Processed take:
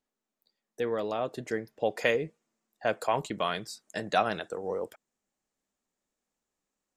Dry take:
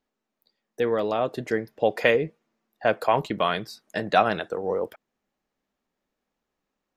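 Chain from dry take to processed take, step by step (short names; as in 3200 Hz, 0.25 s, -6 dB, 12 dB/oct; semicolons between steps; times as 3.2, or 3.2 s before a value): bell 7700 Hz +8 dB 0.84 oct, from 1.99 s +14.5 dB; gain -6.5 dB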